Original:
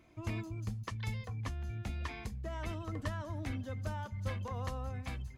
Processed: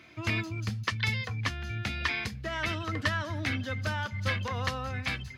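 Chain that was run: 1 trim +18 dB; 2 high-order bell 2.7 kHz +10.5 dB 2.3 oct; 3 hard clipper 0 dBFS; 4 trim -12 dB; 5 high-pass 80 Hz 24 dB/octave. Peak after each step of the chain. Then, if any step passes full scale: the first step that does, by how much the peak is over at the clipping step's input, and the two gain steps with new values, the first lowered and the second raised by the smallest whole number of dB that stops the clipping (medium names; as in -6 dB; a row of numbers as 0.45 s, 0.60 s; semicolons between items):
-7.5 dBFS, -2.0 dBFS, -2.0 dBFS, -14.0 dBFS, -14.0 dBFS; nothing clips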